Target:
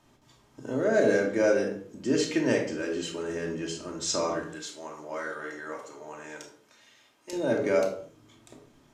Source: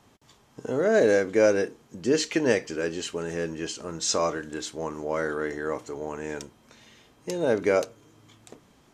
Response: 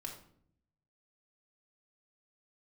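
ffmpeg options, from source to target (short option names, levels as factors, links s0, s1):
-filter_complex "[0:a]asettb=1/sr,asplit=3[s0][s1][s2];[s0]atrim=end=4.444[s3];[s1]atrim=start=4.44:end=7.33,asetpts=PTS-STARTPTS,afade=t=in:d=0.004:c=qsin,afade=t=out:st=2.886:d=0.004:c=qsin,highpass=f=860:p=1[s4];[s2]atrim=start=7.326[s5];[s3][s4]acrossfade=d=0.004:c1=hsin:c2=qsin[s6];[s6][s5]acrossfade=d=0.004:c1=qsin:c2=hsin[s7];[1:a]atrim=start_sample=2205,afade=t=out:st=0.35:d=0.01,atrim=end_sample=15876[s8];[s7][s8]afir=irnorm=-1:irlink=0"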